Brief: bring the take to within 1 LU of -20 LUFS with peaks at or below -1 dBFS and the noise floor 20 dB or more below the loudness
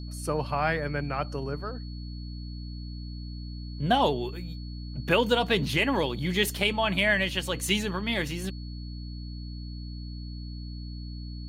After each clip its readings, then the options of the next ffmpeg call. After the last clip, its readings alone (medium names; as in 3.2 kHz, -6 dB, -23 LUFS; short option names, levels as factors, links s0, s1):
hum 60 Hz; highest harmonic 300 Hz; hum level -35 dBFS; steady tone 4.4 kHz; tone level -49 dBFS; loudness -27.5 LUFS; peak level -10.5 dBFS; loudness target -20.0 LUFS
-> -af "bandreject=f=60:t=h:w=4,bandreject=f=120:t=h:w=4,bandreject=f=180:t=h:w=4,bandreject=f=240:t=h:w=4,bandreject=f=300:t=h:w=4"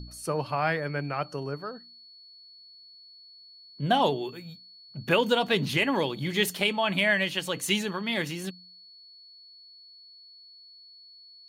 hum not found; steady tone 4.4 kHz; tone level -49 dBFS
-> -af "bandreject=f=4400:w=30"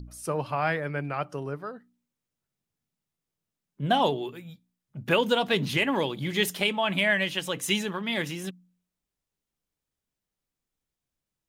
steady tone not found; loudness -27.0 LUFS; peak level -10.5 dBFS; loudness target -20.0 LUFS
-> -af "volume=2.24"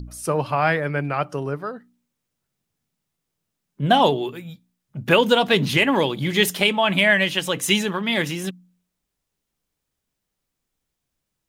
loudness -20.0 LUFS; peak level -3.5 dBFS; noise floor -81 dBFS